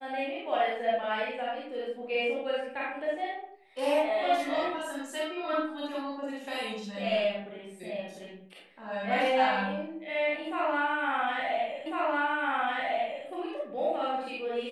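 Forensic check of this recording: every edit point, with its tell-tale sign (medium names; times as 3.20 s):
11.86 s: repeat of the last 1.4 s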